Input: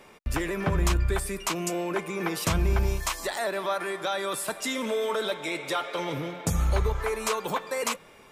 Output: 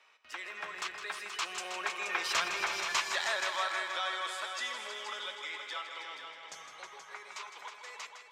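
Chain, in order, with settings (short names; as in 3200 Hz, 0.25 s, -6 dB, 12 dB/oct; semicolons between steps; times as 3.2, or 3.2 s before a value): Doppler pass-by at 2.68, 20 m/s, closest 16 m; HPF 1200 Hz 12 dB/oct; high shelf 5100 Hz +11 dB; soft clip -16 dBFS, distortion -20 dB; air absorption 170 m; multi-head echo 0.159 s, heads all three, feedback 42%, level -10 dB; gain +4 dB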